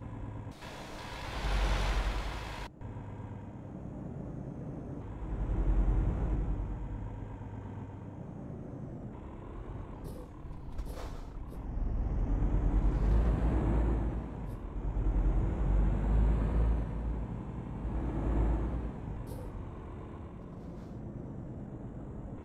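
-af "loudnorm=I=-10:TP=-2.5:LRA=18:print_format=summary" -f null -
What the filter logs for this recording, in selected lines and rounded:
Input Integrated:    -37.2 LUFS
Input True Peak:     -17.7 dBTP
Input LRA:            11.3 LU
Input Threshold:     -47.2 LUFS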